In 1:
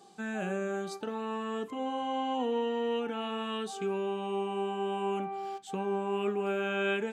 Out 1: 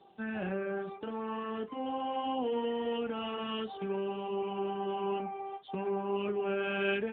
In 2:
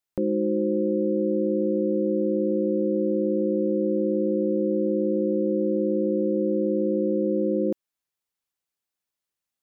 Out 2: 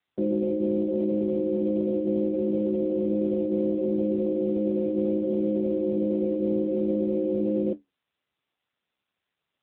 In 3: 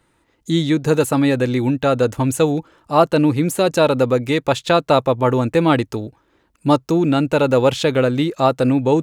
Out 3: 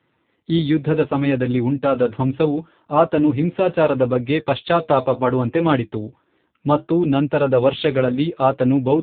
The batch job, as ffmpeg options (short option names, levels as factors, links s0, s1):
-af "aemphasis=mode=production:type=50kf,flanger=delay=6.9:depth=6.7:regen=-60:speed=0.69:shape=triangular,volume=1.41" -ar 8000 -c:a libopencore_amrnb -b:a 7400